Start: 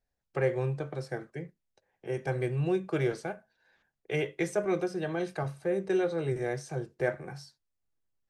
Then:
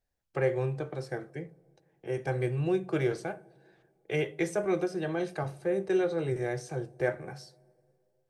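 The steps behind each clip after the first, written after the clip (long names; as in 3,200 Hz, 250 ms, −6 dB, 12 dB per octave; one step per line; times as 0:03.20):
on a send at −10.5 dB: flat-topped bell 2,900 Hz −13.5 dB 2.8 octaves + convolution reverb, pre-delay 3 ms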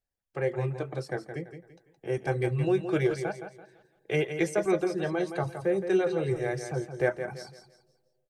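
reverb reduction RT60 0.69 s
automatic gain control gain up to 9 dB
on a send: repeating echo 168 ms, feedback 33%, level −9 dB
on the sum: level −6 dB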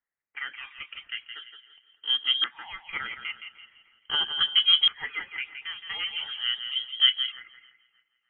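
auto-filter high-pass saw down 0.41 Hz 370–1,900 Hz
feedback echo with a high-pass in the loop 304 ms, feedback 49%, high-pass 850 Hz, level −22 dB
voice inversion scrambler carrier 3,600 Hz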